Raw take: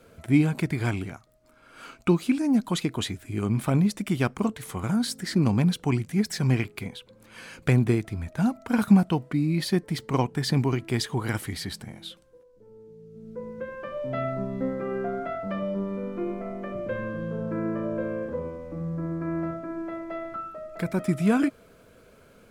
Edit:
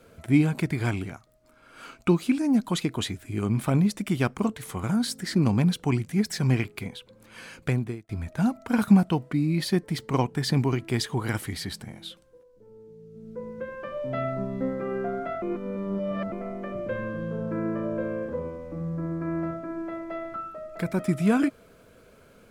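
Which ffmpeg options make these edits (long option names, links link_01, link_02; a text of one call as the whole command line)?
ffmpeg -i in.wav -filter_complex "[0:a]asplit=4[link_01][link_02][link_03][link_04];[link_01]atrim=end=8.09,asetpts=PTS-STARTPTS,afade=type=out:start_time=7.47:duration=0.62[link_05];[link_02]atrim=start=8.09:end=15.422,asetpts=PTS-STARTPTS,afade=type=in:duration=0.004:curve=hsin[link_06];[link_03]atrim=start=15.418:end=16.322,asetpts=PTS-STARTPTS,areverse[link_07];[link_04]atrim=start=16.318[link_08];[link_05][link_06]concat=n=2:v=0:a=1[link_09];[link_09][link_07]acrossfade=duration=0.004:curve1=hsin:curve2=hsin[link_10];[link_10][link_08]acrossfade=duration=0.004:curve1=hsin:curve2=hsin" out.wav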